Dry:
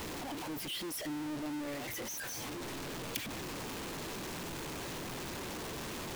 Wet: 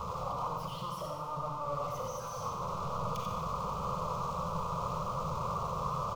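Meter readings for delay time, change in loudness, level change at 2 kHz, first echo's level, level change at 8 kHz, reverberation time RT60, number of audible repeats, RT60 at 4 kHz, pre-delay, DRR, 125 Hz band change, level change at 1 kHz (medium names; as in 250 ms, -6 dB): 90 ms, +3.0 dB, -10.5 dB, -6.0 dB, -8.0 dB, 1.5 s, 1, 1.3 s, 29 ms, -0.5 dB, +8.0 dB, +12.0 dB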